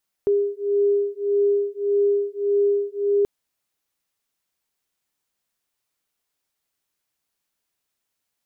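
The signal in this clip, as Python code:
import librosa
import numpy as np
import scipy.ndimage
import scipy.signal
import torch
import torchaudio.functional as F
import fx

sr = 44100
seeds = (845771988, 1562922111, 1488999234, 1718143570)

y = fx.two_tone_beats(sr, length_s=2.98, hz=404.0, beat_hz=1.7, level_db=-21.0)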